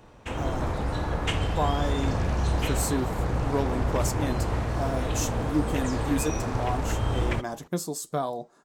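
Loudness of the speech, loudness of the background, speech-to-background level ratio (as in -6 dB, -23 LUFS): -32.0 LUFS, -29.0 LUFS, -3.0 dB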